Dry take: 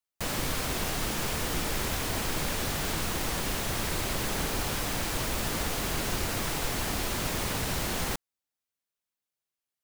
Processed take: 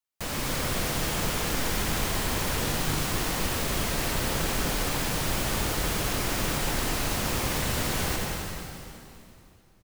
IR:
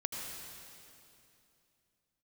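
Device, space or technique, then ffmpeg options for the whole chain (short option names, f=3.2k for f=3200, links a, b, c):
cave: -filter_complex "[0:a]aecho=1:1:260:0.335[a];[1:a]atrim=start_sample=2205[b];[a][b]afir=irnorm=-1:irlink=0"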